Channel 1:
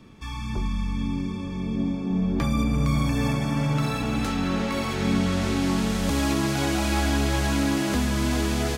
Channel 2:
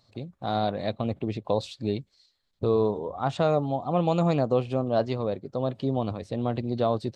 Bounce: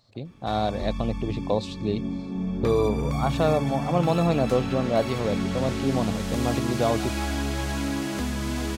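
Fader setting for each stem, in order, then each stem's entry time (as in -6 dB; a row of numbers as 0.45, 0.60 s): -4.5, +1.0 dB; 0.25, 0.00 s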